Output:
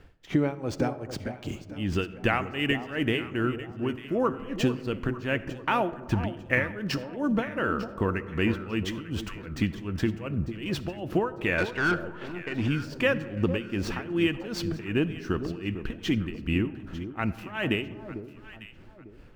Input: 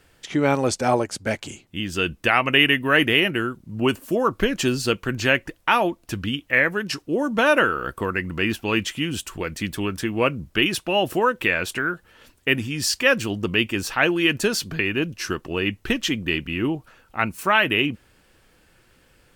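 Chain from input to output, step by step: median filter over 5 samples; tilt EQ -2 dB/octave; compression, threshold -21 dBFS, peak gain reduction 10.5 dB; 3.45–4.07 s: slow attack 281 ms; tremolo 2.6 Hz, depth 93%; 11.58–12.68 s: overdrive pedal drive 22 dB, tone 1.9 kHz, clips at -17.5 dBFS; echo whose repeats swap between lows and highs 449 ms, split 970 Hz, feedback 52%, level -9.5 dB; reverberation RT60 1.8 s, pre-delay 20 ms, DRR 15.5 dB; trim +1 dB

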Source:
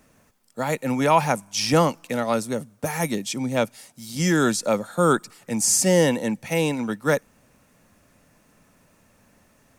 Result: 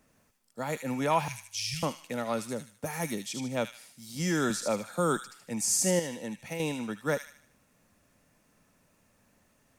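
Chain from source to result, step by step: 1.28–1.83 s: elliptic band-stop 130–2300 Hz; 5.99–6.60 s: compression, threshold -25 dBFS, peak gain reduction 10 dB; feedback echo behind a high-pass 76 ms, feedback 41%, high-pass 2.3 kHz, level -4 dB; 4.50–5.17 s: three bands compressed up and down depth 40%; trim -8.5 dB

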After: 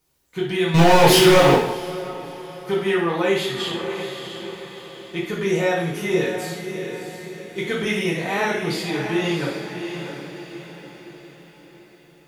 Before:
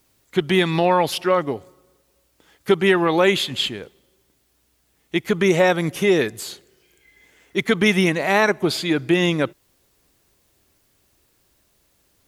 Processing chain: echo that smears into a reverb 669 ms, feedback 47%, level -7.5 dB; 0.74–1.55 s: waveshaping leveller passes 5; two-slope reverb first 0.59 s, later 2.6 s, from -21 dB, DRR -6 dB; trim -11.5 dB

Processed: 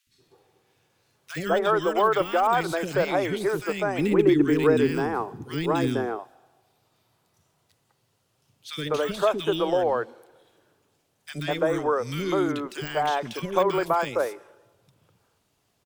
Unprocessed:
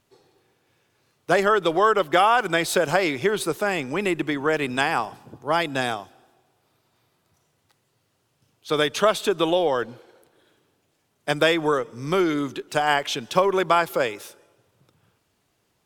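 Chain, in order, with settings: de-esser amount 85%; 3.91–5.99 s: resonant low shelf 500 Hz +6 dB, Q 3; three bands offset in time highs, lows, mids 70/200 ms, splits 320/1800 Hz

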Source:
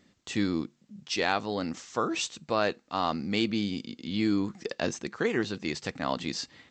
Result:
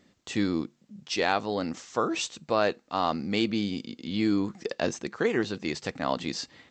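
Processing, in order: peaking EQ 570 Hz +3 dB 1.7 oct

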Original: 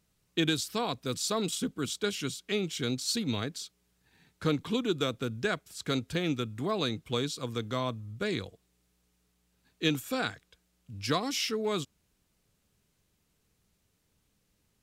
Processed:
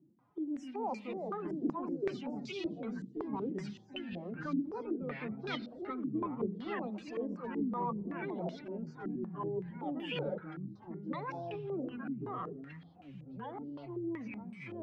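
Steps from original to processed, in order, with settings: hum notches 50/100/150/200/250/300/350/400 Hz; spectral gate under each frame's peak -25 dB strong; high-pass 68 Hz 24 dB/octave; spectral gate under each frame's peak -30 dB strong; peak limiter -21.5 dBFS, peak gain reduction 6.5 dB; reverse; compression 12:1, threshold -45 dBFS, peak gain reduction 18.5 dB; reverse; formant-preserving pitch shift +11 st; on a send at -20.5 dB: reverberation RT60 1.1 s, pre-delay 57 ms; on the sum: ever faster or slower copies 187 ms, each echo -3 st, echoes 3; step-sequenced low-pass 5.3 Hz 300–2700 Hz; trim +6.5 dB

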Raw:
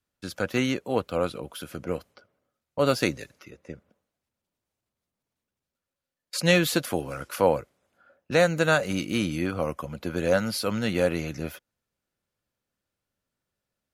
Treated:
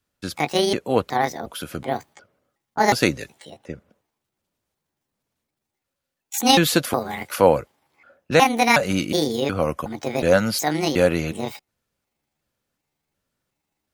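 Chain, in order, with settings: pitch shift switched off and on +7 st, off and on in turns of 365 ms; trim +6 dB

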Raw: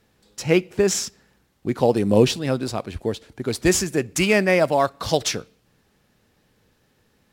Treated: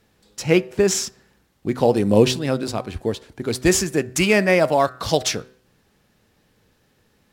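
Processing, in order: de-hum 126.9 Hz, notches 15; trim +1.5 dB

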